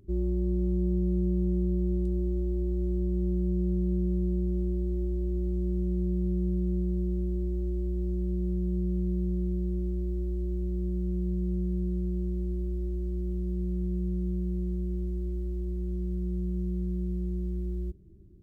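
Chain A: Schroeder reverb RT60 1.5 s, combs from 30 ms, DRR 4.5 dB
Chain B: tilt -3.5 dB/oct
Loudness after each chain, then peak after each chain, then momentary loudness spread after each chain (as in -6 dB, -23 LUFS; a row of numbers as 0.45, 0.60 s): -27.0, -19.0 LUFS; -14.5, -7.0 dBFS; 6, 4 LU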